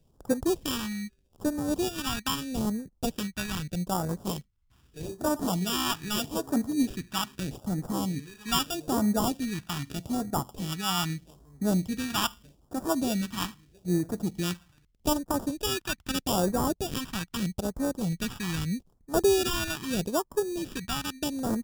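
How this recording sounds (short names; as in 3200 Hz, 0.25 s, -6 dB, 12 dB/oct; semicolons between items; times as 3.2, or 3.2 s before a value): aliases and images of a low sample rate 2100 Hz, jitter 0%; phasing stages 2, 0.8 Hz, lowest notch 480–2700 Hz; MP3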